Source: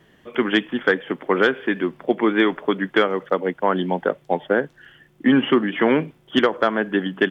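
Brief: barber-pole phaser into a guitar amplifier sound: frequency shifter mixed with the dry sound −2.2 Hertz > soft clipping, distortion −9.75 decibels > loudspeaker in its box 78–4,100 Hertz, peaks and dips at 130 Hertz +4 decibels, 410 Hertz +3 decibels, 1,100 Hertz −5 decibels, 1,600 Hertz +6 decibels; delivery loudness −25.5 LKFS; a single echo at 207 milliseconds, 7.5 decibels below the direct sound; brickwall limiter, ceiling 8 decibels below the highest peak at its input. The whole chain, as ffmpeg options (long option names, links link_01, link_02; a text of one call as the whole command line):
ffmpeg -i in.wav -filter_complex "[0:a]alimiter=limit=-13dB:level=0:latency=1,aecho=1:1:207:0.422,asplit=2[link_01][link_02];[link_02]afreqshift=-2.2[link_03];[link_01][link_03]amix=inputs=2:normalize=1,asoftclip=threshold=-24.5dB,highpass=78,equalizer=frequency=130:width_type=q:width=4:gain=4,equalizer=frequency=410:width_type=q:width=4:gain=3,equalizer=frequency=1100:width_type=q:width=4:gain=-5,equalizer=frequency=1600:width_type=q:width=4:gain=6,lowpass=frequency=4100:width=0.5412,lowpass=frequency=4100:width=1.3066,volume=4.5dB" out.wav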